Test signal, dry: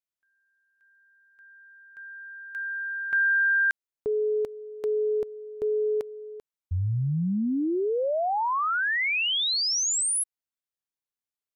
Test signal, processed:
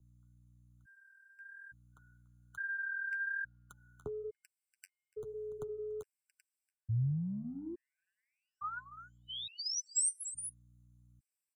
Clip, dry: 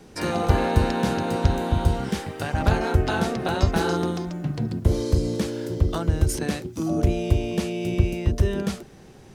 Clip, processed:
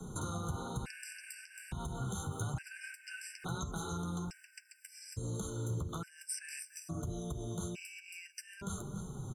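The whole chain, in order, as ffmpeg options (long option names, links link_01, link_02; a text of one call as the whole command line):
ffmpeg -i in.wav -filter_complex "[0:a]aecho=1:1:0.8:0.45,aecho=1:1:289:0.106,acompressor=threshold=-34dB:ratio=3:attack=4.7:release=61:detection=rms,flanger=delay=4.5:depth=7.7:regen=-35:speed=1.1:shape=sinusoidal,aeval=exprs='val(0)+0.000316*(sin(2*PI*60*n/s)+sin(2*PI*2*60*n/s)/2+sin(2*PI*3*60*n/s)/3+sin(2*PI*4*60*n/s)/4+sin(2*PI*5*60*n/s)/5)':channel_layout=same,bandreject=frequency=285.3:width_type=h:width=4,bandreject=frequency=570.6:width_type=h:width=4,bandreject=frequency=855.9:width_type=h:width=4,acrossover=split=140|540|1500|6700[link_01][link_02][link_03][link_04][link_05];[link_01]acompressor=threshold=-49dB:ratio=4[link_06];[link_02]acompressor=threshold=-50dB:ratio=4[link_07];[link_03]acompressor=threshold=-52dB:ratio=4[link_08];[link_04]acompressor=threshold=-41dB:ratio=4[link_09];[link_05]acompressor=threshold=-52dB:ratio=4[link_10];[link_06][link_07][link_08][link_09][link_10]amix=inputs=5:normalize=0,equalizer=frequency=125:width_type=o:width=1:gain=9,equalizer=frequency=250:width_type=o:width=1:gain=-3,equalizer=frequency=4000:width_type=o:width=1:gain=-8,equalizer=frequency=8000:width_type=o:width=1:gain=11,afftfilt=real='re*gt(sin(2*PI*0.58*pts/sr)*(1-2*mod(floor(b*sr/1024/1500),2)),0)':imag='im*gt(sin(2*PI*0.58*pts/sr)*(1-2*mod(floor(b*sr/1024/1500),2)),0)':win_size=1024:overlap=0.75,volume=4dB" out.wav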